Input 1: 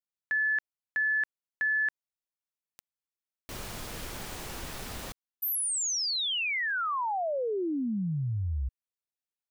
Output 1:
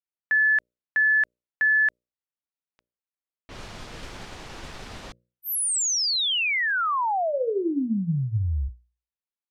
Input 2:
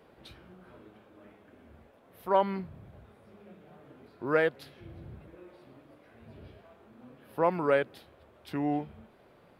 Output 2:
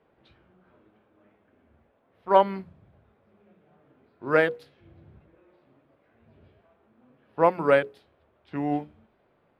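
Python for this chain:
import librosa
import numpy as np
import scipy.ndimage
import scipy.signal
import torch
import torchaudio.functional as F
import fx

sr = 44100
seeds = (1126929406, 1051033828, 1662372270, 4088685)

y = fx.env_lowpass(x, sr, base_hz=2800.0, full_db=-27.0)
y = fx.hum_notches(y, sr, base_hz=60, count=10)
y = fx.upward_expand(y, sr, threshold_db=-49.0, expansion=1.5)
y = y * librosa.db_to_amplitude(7.5)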